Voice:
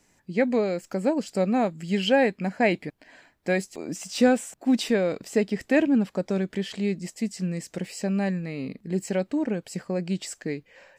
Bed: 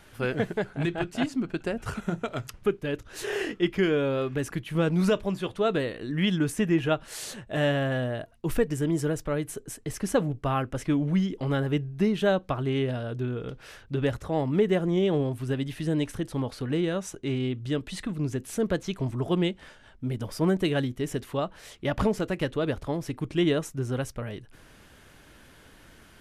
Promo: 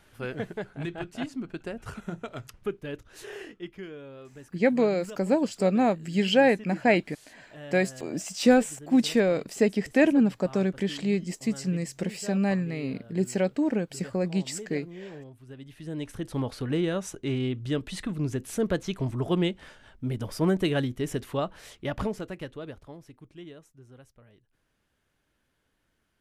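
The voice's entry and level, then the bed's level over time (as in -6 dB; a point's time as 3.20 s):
4.25 s, +0.5 dB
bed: 3.00 s -6 dB
3.95 s -18 dB
15.44 s -18 dB
16.38 s 0 dB
21.57 s 0 dB
23.55 s -22 dB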